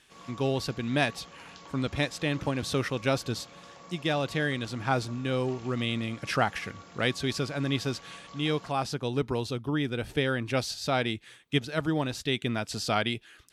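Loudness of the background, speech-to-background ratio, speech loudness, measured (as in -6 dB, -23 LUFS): -49.0 LUFS, 19.0 dB, -30.0 LUFS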